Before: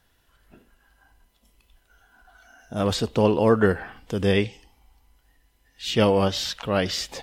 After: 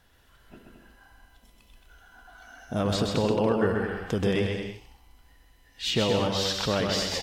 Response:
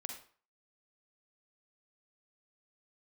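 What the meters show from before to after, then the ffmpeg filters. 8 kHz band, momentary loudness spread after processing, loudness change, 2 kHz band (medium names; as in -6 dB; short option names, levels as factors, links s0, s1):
-0.5 dB, 7 LU, -3.5 dB, -3.0 dB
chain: -filter_complex "[0:a]acompressor=threshold=0.0447:ratio=4,highshelf=f=7200:g=-4.5,asplit=2[s0][s1];[s1]aecho=0:1:130|221|284.7|329.3|360.5:0.631|0.398|0.251|0.158|0.1[s2];[s0][s2]amix=inputs=2:normalize=0,volume=1.41"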